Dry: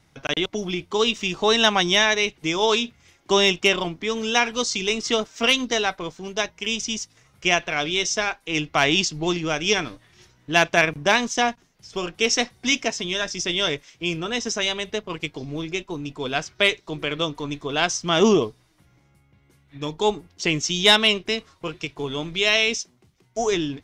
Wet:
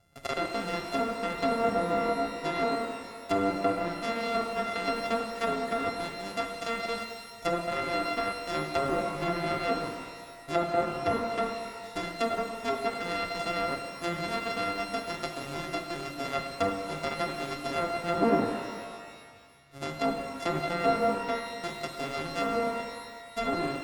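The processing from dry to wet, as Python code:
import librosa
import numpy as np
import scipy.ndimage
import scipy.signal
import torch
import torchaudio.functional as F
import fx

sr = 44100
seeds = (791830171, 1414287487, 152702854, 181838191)

y = np.r_[np.sort(x[:len(x) // 64 * 64].reshape(-1, 64), axis=1).ravel(), x[len(x) // 64 * 64:]]
y = fx.env_lowpass_down(y, sr, base_hz=920.0, full_db=-16.5)
y = fx.rev_shimmer(y, sr, seeds[0], rt60_s=1.7, semitones=12, shimmer_db=-8, drr_db=3.5)
y = F.gain(torch.from_numpy(y), -6.5).numpy()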